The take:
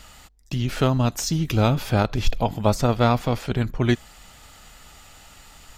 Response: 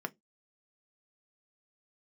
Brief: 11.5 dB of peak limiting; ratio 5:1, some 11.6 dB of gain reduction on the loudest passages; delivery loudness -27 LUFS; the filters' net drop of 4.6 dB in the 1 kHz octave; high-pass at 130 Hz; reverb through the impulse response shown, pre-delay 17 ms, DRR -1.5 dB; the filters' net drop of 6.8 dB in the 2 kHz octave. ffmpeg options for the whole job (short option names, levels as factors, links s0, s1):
-filter_complex "[0:a]highpass=130,equalizer=f=1000:t=o:g=-4.5,equalizer=f=2000:t=o:g=-8,acompressor=threshold=0.0316:ratio=5,alimiter=level_in=1.78:limit=0.0631:level=0:latency=1,volume=0.562,asplit=2[s0][s1];[1:a]atrim=start_sample=2205,adelay=17[s2];[s1][s2]afir=irnorm=-1:irlink=0,volume=0.891[s3];[s0][s3]amix=inputs=2:normalize=0,volume=2.66"